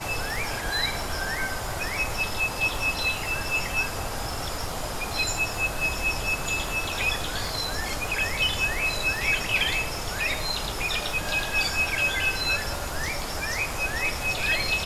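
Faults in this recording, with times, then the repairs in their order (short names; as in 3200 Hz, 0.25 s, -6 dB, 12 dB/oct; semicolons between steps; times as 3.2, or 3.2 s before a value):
crackle 52/s -33 dBFS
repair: de-click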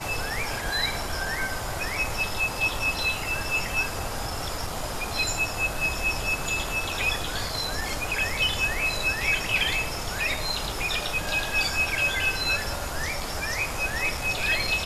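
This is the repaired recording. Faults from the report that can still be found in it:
none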